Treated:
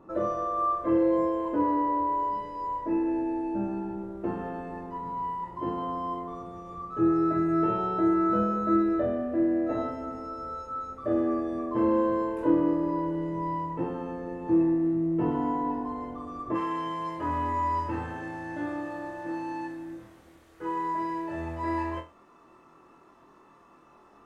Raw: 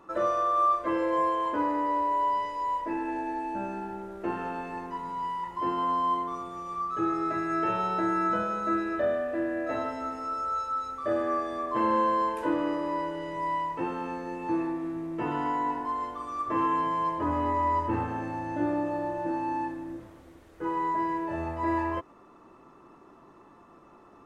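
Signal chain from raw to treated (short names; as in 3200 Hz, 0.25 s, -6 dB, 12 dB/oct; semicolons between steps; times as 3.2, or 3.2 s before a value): tilt shelf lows +8.5 dB, about 890 Hz, from 16.54 s lows -3 dB; flutter echo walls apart 4.2 m, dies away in 0.27 s; gain -3 dB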